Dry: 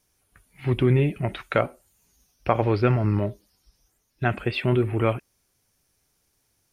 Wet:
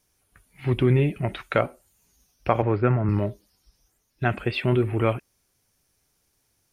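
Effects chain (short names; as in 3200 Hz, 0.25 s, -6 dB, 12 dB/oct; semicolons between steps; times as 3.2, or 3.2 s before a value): 2.62–3.09 Chebyshev band-pass 110–1700 Hz, order 2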